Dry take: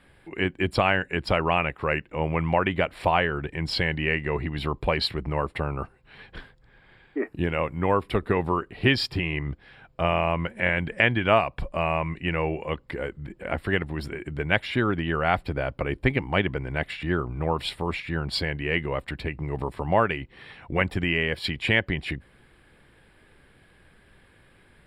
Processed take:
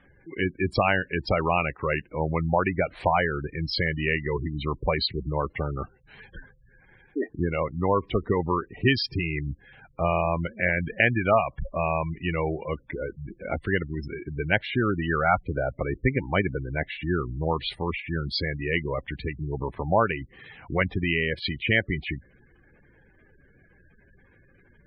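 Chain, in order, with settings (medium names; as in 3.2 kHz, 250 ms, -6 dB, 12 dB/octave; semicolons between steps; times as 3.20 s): spectral gate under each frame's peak -15 dB strong; 14.98–15.77 s: resonant low-pass 2.8 kHz -> 1 kHz, resonance Q 1.9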